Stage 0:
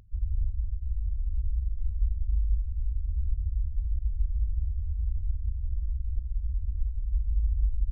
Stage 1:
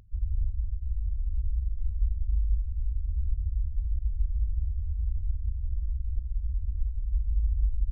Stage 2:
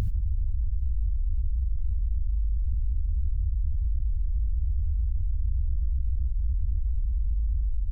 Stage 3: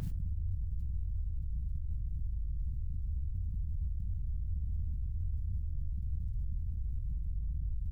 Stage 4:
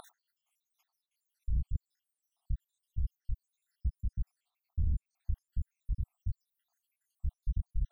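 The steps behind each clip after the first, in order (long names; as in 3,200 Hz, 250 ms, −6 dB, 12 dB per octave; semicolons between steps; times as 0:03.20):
no processing that can be heard
envelope flattener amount 100%; level −4.5 dB
ceiling on every frequency bin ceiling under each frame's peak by 17 dB; brickwall limiter −25.5 dBFS, peak gain reduction 11.5 dB; flanger 1.4 Hz, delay 6.4 ms, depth 8.4 ms, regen +87%; level +1 dB
time-frequency cells dropped at random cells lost 85%; in parallel at −4.5 dB: soft clipping −37 dBFS, distortion −11 dB; on the sum: level +4 dB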